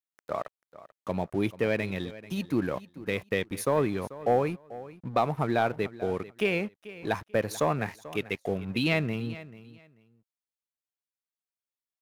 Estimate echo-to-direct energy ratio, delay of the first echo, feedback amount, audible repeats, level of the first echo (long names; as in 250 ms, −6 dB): −17.0 dB, 439 ms, 20%, 2, −17.0 dB